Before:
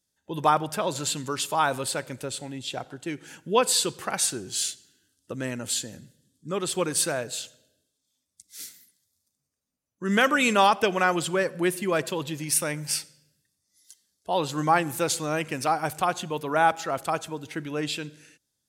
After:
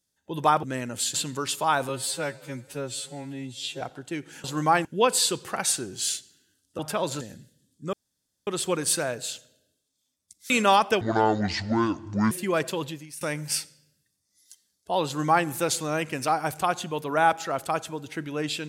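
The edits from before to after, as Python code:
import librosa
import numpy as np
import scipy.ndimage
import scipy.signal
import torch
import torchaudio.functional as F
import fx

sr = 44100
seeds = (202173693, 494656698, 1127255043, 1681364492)

y = fx.edit(x, sr, fx.swap(start_s=0.63, length_s=0.42, other_s=5.33, other_length_s=0.51),
    fx.stretch_span(start_s=1.8, length_s=0.96, factor=2.0),
    fx.insert_room_tone(at_s=6.56, length_s=0.54),
    fx.cut(start_s=8.59, length_s=1.82),
    fx.speed_span(start_s=10.92, length_s=0.78, speed=0.6),
    fx.fade_out_to(start_s=12.24, length_s=0.36, curve='qua', floor_db=-18.5),
    fx.duplicate(start_s=14.45, length_s=0.41, to_s=3.39), tone=tone)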